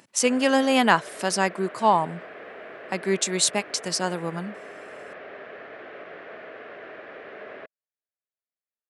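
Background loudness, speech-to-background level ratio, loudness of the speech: −41.0 LKFS, 17.5 dB, −23.5 LKFS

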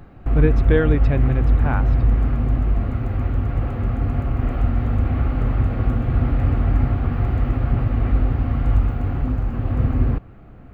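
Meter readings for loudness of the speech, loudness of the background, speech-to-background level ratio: −23.5 LKFS, −21.5 LKFS, −2.0 dB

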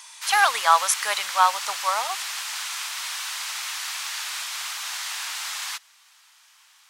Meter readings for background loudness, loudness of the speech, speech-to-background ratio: −29.0 LKFS, −22.0 LKFS, 7.0 dB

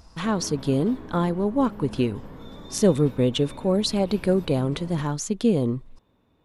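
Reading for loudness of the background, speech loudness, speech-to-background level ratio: −42.0 LKFS, −24.0 LKFS, 18.0 dB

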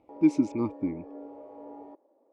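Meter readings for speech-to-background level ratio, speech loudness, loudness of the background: 17.5 dB, −28.0 LKFS, −45.5 LKFS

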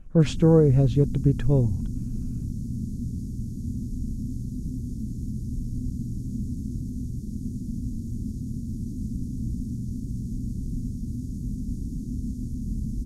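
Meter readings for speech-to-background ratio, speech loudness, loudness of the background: 12.0 dB, −21.0 LKFS, −33.0 LKFS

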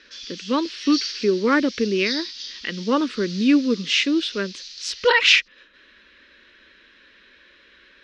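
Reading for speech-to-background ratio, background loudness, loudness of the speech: 12.0 dB, −32.5 LKFS, −20.5 LKFS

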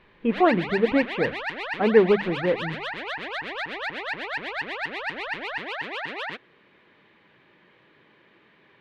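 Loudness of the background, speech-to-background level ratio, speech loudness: −31.0 LKFS, 8.0 dB, −23.0 LKFS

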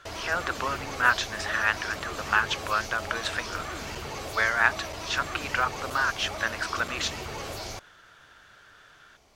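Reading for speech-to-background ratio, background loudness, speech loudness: 8.0 dB, −36.0 LKFS, −28.0 LKFS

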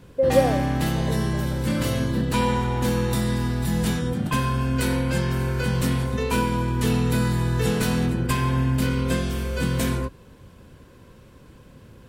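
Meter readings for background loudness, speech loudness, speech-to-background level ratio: −24.0 LKFS, −24.5 LKFS, −0.5 dB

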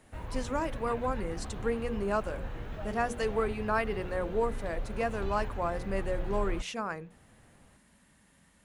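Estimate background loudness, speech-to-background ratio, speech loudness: −41.5 LKFS, 8.0 dB, −33.5 LKFS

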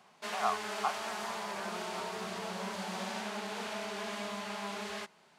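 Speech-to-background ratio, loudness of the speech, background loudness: −1.0 dB, −39.5 LKFS, −38.5 LKFS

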